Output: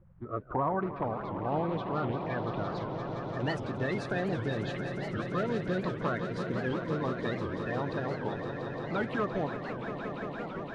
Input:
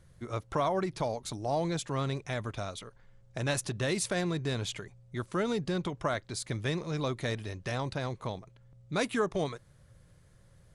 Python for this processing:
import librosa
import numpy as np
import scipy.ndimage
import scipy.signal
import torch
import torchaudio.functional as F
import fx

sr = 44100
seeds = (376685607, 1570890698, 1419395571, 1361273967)

p1 = fx.spec_quant(x, sr, step_db=30)
p2 = (np.mod(10.0 ** (21.0 / 20.0) * p1 + 1.0, 2.0) - 1.0) / 10.0 ** (21.0 / 20.0)
p3 = p1 + F.gain(torch.from_numpy(p2), -11.5).numpy()
p4 = fx.air_absorb(p3, sr, metres=330.0)
p5 = p4 + fx.echo_swell(p4, sr, ms=172, loudest=5, wet_db=-10.5, dry=0)
p6 = fx.filter_sweep_lowpass(p5, sr, from_hz=1200.0, to_hz=8900.0, start_s=0.11, end_s=3.78, q=1.3)
p7 = fx.record_warp(p6, sr, rpm=78.0, depth_cents=250.0)
y = F.gain(torch.from_numpy(p7), -2.0).numpy()